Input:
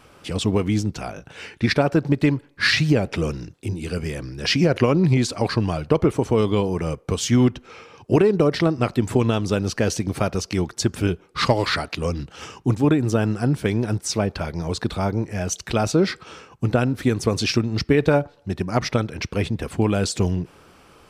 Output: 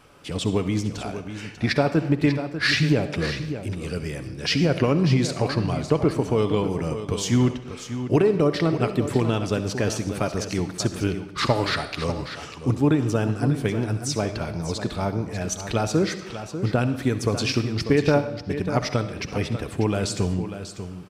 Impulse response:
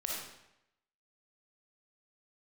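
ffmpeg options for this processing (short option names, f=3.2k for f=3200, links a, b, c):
-filter_complex "[0:a]aecho=1:1:66|593:0.133|0.299,asplit=2[a][b];[1:a]atrim=start_sample=2205,asetrate=41013,aresample=44100,adelay=7[c];[b][c]afir=irnorm=-1:irlink=0,volume=-13dB[d];[a][d]amix=inputs=2:normalize=0,volume=-3dB"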